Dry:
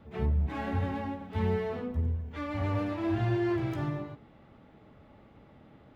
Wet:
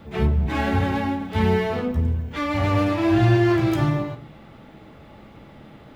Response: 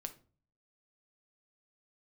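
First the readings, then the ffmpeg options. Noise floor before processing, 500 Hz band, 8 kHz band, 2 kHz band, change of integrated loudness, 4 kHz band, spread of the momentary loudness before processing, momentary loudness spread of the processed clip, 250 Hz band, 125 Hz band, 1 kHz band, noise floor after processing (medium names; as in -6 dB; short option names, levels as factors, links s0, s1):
-57 dBFS, +10.0 dB, no reading, +13.0 dB, +10.0 dB, +14.5 dB, 7 LU, 8 LU, +11.0 dB, +9.5 dB, +11.5 dB, -46 dBFS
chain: -filter_complex "[0:a]asplit=2[s0][s1];[1:a]atrim=start_sample=2205,highshelf=f=2400:g=10[s2];[s1][s2]afir=irnorm=-1:irlink=0,volume=3.16[s3];[s0][s3]amix=inputs=2:normalize=0"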